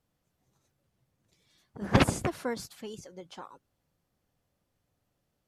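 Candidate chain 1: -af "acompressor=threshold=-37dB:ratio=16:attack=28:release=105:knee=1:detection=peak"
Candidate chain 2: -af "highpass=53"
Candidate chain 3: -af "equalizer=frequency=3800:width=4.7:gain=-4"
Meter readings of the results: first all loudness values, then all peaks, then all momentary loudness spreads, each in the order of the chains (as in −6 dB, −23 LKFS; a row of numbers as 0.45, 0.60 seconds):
−41.5, −29.5, −29.5 LKFS; −20.5, −5.0, −5.5 dBFS; 13, 21, 21 LU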